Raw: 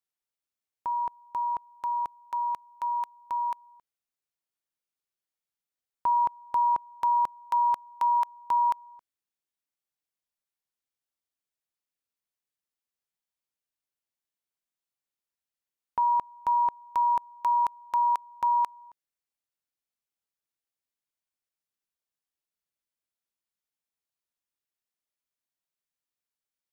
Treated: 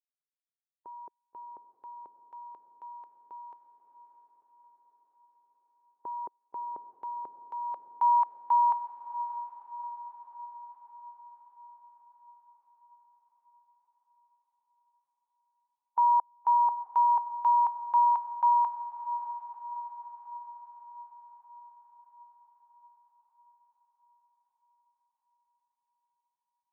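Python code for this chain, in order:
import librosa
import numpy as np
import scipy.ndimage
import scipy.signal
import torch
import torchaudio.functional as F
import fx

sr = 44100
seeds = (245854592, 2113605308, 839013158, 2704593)

y = fx.bin_expand(x, sr, power=1.5)
y = fx.filter_sweep_bandpass(y, sr, from_hz=390.0, to_hz=890.0, start_s=7.52, end_s=8.06, q=2.8)
y = fx.echo_diffused(y, sr, ms=641, feedback_pct=61, wet_db=-11.0)
y = y * 10.0 ** (2.0 / 20.0)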